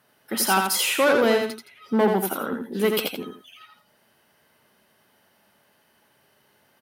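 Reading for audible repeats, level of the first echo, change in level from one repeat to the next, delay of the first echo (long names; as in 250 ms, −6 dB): 2, −4.5 dB, −11.5 dB, 84 ms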